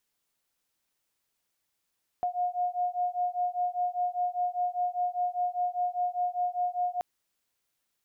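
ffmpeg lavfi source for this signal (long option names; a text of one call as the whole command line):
ffmpeg -f lavfi -i "aevalsrc='0.0316*(sin(2*PI*714*t)+sin(2*PI*719*t))':duration=4.78:sample_rate=44100" out.wav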